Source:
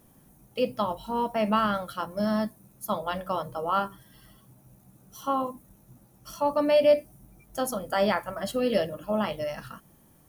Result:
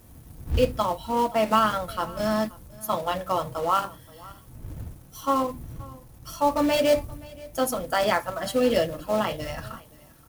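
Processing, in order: wind noise 100 Hz -44 dBFS; in parallel at -3 dB: companded quantiser 4-bit; on the sum: notch comb 200 Hz; echo 0.526 s -22 dB

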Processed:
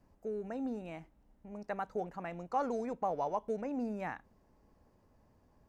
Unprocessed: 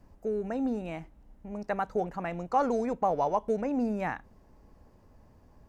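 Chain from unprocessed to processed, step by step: low shelf 79 Hz -6.5 dB; gain -7 dB

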